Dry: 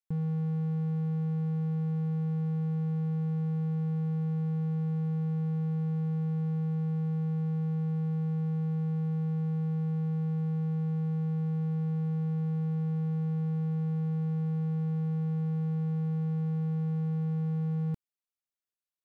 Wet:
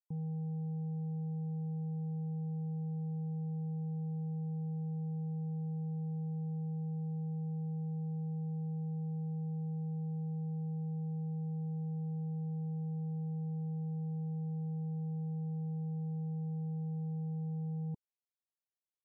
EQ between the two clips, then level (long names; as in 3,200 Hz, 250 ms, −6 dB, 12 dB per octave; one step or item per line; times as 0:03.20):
linear-phase brick-wall low-pass 1,000 Hz
low-shelf EQ 68 Hz −12 dB
parametric band 420 Hz −7.5 dB 0.26 octaves
−5.5 dB